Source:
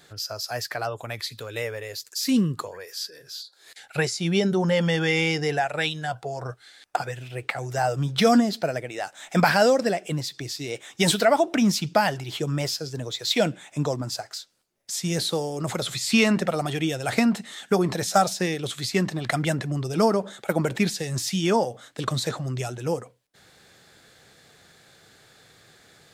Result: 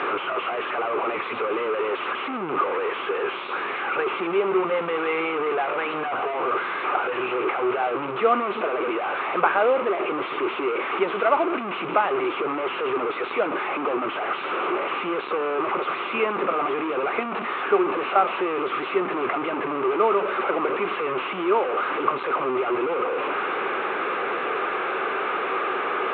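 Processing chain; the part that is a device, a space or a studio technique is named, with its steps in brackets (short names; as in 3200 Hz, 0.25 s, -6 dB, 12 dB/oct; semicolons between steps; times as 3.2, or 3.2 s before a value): digital answering machine (BPF 340–3100 Hz; delta modulation 16 kbps, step -19.5 dBFS; speaker cabinet 350–3600 Hz, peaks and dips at 380 Hz +9 dB, 650 Hz -4 dB, 1200 Hz +10 dB, 1800 Hz -9 dB, 3200 Hz -7 dB)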